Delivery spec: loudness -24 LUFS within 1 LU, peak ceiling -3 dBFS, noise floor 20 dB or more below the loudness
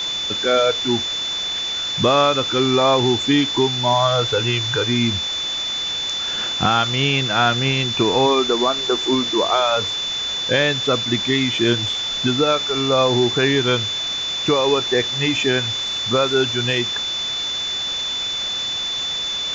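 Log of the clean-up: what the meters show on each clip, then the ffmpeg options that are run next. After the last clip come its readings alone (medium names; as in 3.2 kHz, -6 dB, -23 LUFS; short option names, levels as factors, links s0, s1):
steady tone 3.5 kHz; tone level -22 dBFS; noise floor -25 dBFS; noise floor target -39 dBFS; loudness -18.5 LUFS; peak level -3.0 dBFS; loudness target -24.0 LUFS
-> -af "bandreject=f=3500:w=30"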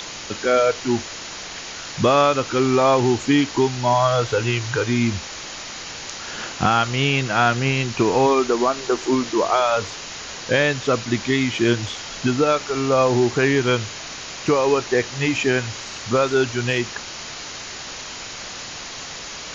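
steady tone not found; noise floor -34 dBFS; noise floor target -40 dBFS
-> -af "afftdn=nr=6:nf=-34"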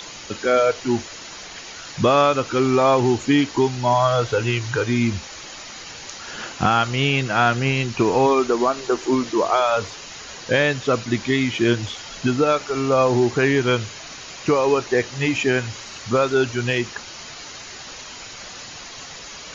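noise floor -38 dBFS; noise floor target -40 dBFS
-> -af "afftdn=nr=6:nf=-38"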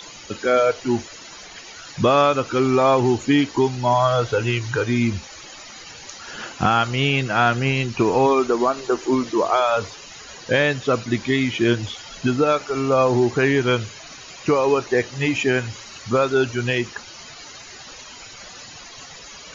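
noise floor -41 dBFS; loudness -20.0 LUFS; peak level -4.0 dBFS; loudness target -24.0 LUFS
-> -af "volume=0.631"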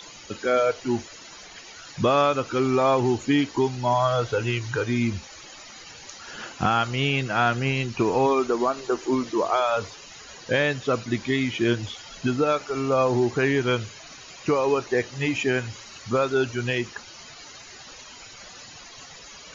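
loudness -24.0 LUFS; peak level -8.0 dBFS; noise floor -45 dBFS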